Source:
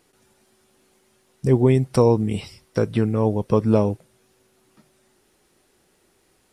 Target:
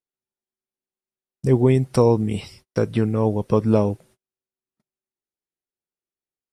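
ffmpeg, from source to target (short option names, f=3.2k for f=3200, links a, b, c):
-af "agate=range=-37dB:threshold=-48dB:ratio=16:detection=peak"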